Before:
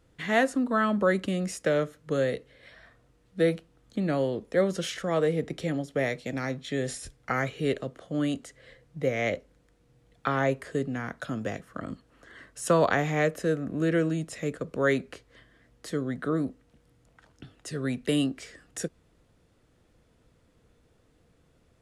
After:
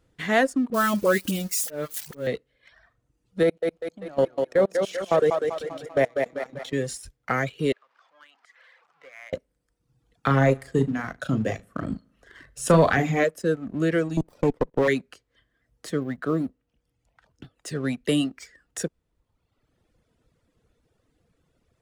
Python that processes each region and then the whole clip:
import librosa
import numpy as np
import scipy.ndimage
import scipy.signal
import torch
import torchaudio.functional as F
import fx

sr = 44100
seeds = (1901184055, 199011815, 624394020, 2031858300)

y = fx.chain(x, sr, fx.crossing_spikes(level_db=-25.0),
    fx.auto_swell(attack_ms=300.0),
    fx.dispersion(late='highs', ms=42.0, hz=570.0), at=(0.7, 2.27))
y = fx.chain(y, sr, fx.peak_eq(hz=750.0, db=8.0, octaves=1.6),
    fx.level_steps(step_db=21),
    fx.echo_thinned(ms=195, feedback_pct=57, hz=160.0, wet_db=-3.0), at=(3.43, 6.73))
y = fx.chain(y, sr, fx.zero_step(step_db=-34.0),
    fx.ladder_bandpass(hz=1600.0, resonance_pct=20),
    fx.band_squash(depth_pct=40), at=(7.72, 9.33))
y = fx.chain(y, sr, fx.low_shelf(hz=240.0, db=9.0),
    fx.doubler(ms=37.0, db=-7),
    fx.echo_feedback(ms=75, feedback_pct=53, wet_db=-15.5), at=(10.26, 13.24))
y = fx.chain(y, sr, fx.peak_eq(hz=430.0, db=11.5, octaves=3.0),
    fx.level_steps(step_db=22),
    fx.running_max(window=17), at=(14.17, 14.88))
y = fx.chain(y, sr, fx.high_shelf(hz=4300.0, db=-5.5),
    fx.quant_float(bits=6), at=(16.01, 17.56))
y = fx.dereverb_blind(y, sr, rt60_s=1.2)
y = fx.leveller(y, sr, passes=1)